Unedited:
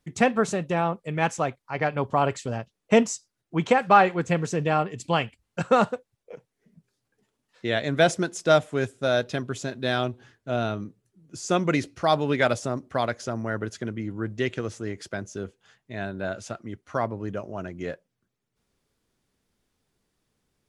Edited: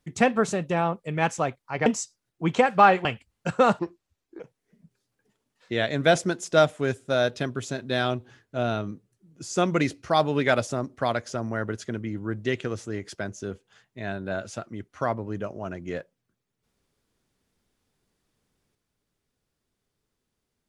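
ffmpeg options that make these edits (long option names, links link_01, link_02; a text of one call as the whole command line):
ffmpeg -i in.wav -filter_complex "[0:a]asplit=5[link_01][link_02][link_03][link_04][link_05];[link_01]atrim=end=1.862[link_06];[link_02]atrim=start=2.978:end=4.172[link_07];[link_03]atrim=start=5.168:end=5.914[link_08];[link_04]atrim=start=5.91:end=6.33,asetpts=PTS-STARTPTS,asetrate=30429,aresample=44100,atrim=end_sample=26843,asetpts=PTS-STARTPTS[link_09];[link_05]atrim=start=6.326[link_10];[link_06][link_07]acrossfade=duration=0.004:curve1=hsin:curve2=hsin[link_11];[link_11][link_08]acrossfade=duration=0.004:curve1=hsin:curve2=hsin[link_12];[link_12][link_09]acrossfade=duration=0.004:curve1=hsin:curve2=hsin[link_13];[link_13][link_10]acrossfade=duration=0.004:curve1=hsin:curve2=hsin" out.wav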